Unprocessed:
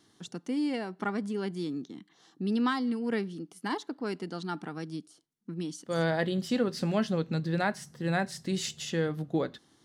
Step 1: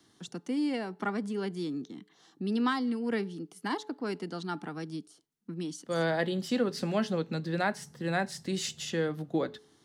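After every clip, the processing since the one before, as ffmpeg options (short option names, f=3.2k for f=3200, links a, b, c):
-filter_complex "[0:a]acrossover=split=170|440|2500[a][b][c][d];[a]acompressor=threshold=-46dB:ratio=6[e];[e][b][c][d]amix=inputs=4:normalize=0,bandreject=f=427.5:t=h:w=4,bandreject=f=855:t=h:w=4"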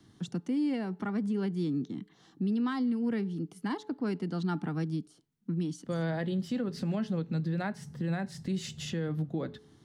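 -af "bass=f=250:g=13,treble=f=4k:g=-4,alimiter=limit=-24dB:level=0:latency=1:release=309"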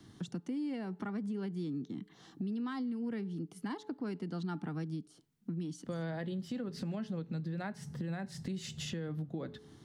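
-af "acompressor=threshold=-43dB:ratio=2.5,volume=3dB"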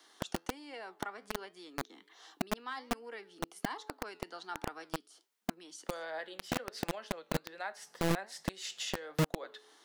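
-filter_complex "[0:a]flanger=delay=6.3:depth=5.7:regen=81:speed=1.3:shape=sinusoidal,acrossover=split=500|4400[a][b][c];[a]acrusher=bits=5:mix=0:aa=0.000001[d];[d][b][c]amix=inputs=3:normalize=0,volume=8.5dB"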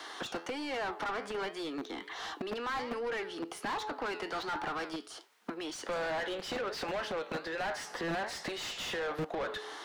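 -filter_complex "[0:a]asplit=2[a][b];[b]highpass=f=720:p=1,volume=35dB,asoftclip=type=tanh:threshold=-19.5dB[c];[a][c]amix=inputs=2:normalize=0,lowpass=f=1.6k:p=1,volume=-6dB,asoftclip=type=tanh:threshold=-24dB,volume=-4.5dB"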